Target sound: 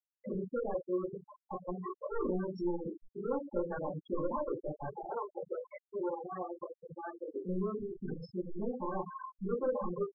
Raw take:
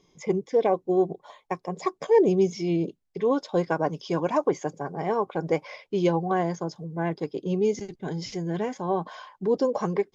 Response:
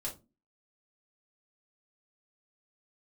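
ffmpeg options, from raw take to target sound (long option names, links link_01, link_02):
-filter_complex "[0:a]asoftclip=type=tanh:threshold=-26dB,asplit=3[link_01][link_02][link_03];[link_01]afade=type=out:start_time=4.9:duration=0.02[link_04];[link_02]highpass=frequency=460:poles=1,afade=type=in:start_time=4.9:duration=0.02,afade=type=out:start_time=7.33:duration=0.02[link_05];[link_03]afade=type=in:start_time=7.33:duration=0.02[link_06];[link_04][link_05][link_06]amix=inputs=3:normalize=0,adynamicequalizer=threshold=0.00891:dfrequency=1300:dqfactor=1.3:tfrequency=1300:tqfactor=1.3:attack=5:release=100:ratio=0.375:range=2.5:mode=boostabove:tftype=bell,acompressor=threshold=-37dB:ratio=2,asplit=2[link_07][link_08];[link_08]adelay=874.6,volume=-18dB,highshelf=frequency=4000:gain=-19.7[link_09];[link_07][link_09]amix=inputs=2:normalize=0[link_10];[1:a]atrim=start_sample=2205,afade=type=out:start_time=0.19:duration=0.01,atrim=end_sample=8820,asetrate=42336,aresample=44100[link_11];[link_10][link_11]afir=irnorm=-1:irlink=0,afftfilt=real='re*gte(hypot(re,im),0.0501)':imag='im*gte(hypot(re,im),0.0501)':win_size=1024:overlap=0.75,highshelf=frequency=2100:gain=-10"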